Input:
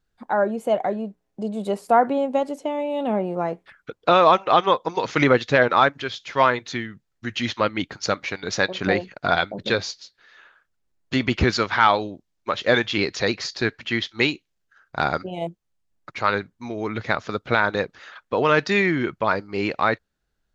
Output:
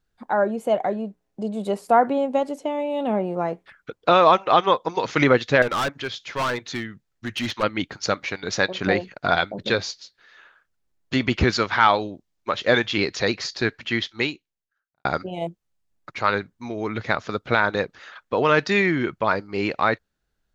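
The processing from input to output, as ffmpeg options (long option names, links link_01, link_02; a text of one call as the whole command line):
ffmpeg -i in.wav -filter_complex "[0:a]asettb=1/sr,asplit=3[link_01][link_02][link_03];[link_01]atrim=end=5.624[link_04];[link_02]atrim=start=5.62:end=7.63,asetpts=PTS-STARTPTS,afade=type=in:duration=0.004:curve=qsin,afade=type=out:start_time=2.006:duration=0.004:curve=qsin,volume=21dB,asoftclip=hard,volume=-21dB[link_05];[link_03]atrim=start=7.626[link_06];[link_04][link_05]acrossfade=duration=0.004:curve1=hsin:curve2=qsin[link_07];[link_07][link_06]acrossfade=duration=0.004:curve1=qsin:curve2=hsin,asplit=2[link_08][link_09];[link_08]atrim=end=15.05,asetpts=PTS-STARTPTS,afade=type=out:start_time=14.04:duration=1.01:curve=qua[link_10];[link_09]atrim=start=15.05,asetpts=PTS-STARTPTS,afade=type=in:duration=0.004:curve=hsin[link_11];[link_10][link_11]concat=n=2:v=0:a=1" out.wav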